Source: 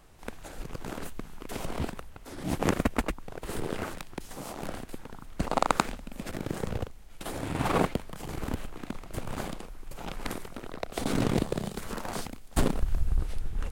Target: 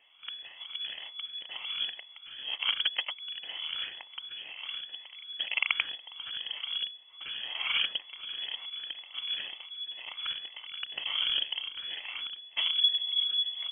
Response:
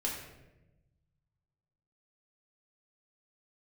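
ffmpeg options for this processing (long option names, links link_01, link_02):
-af "afftfilt=real='re*pow(10,12/40*sin(2*PI*(1.1*log(max(b,1)*sr/1024/100)/log(2)-(-2)*(pts-256)/sr)))':imag='im*pow(10,12/40*sin(2*PI*(1.1*log(max(b,1)*sr/1024/100)/log(2)-(-2)*(pts-256)/sr)))':win_size=1024:overlap=0.75,lowpass=frequency=2900:width_type=q:width=0.5098,lowpass=frequency=2900:width_type=q:width=0.6013,lowpass=frequency=2900:width_type=q:width=0.9,lowpass=frequency=2900:width_type=q:width=2.563,afreqshift=-3400,volume=-5.5dB"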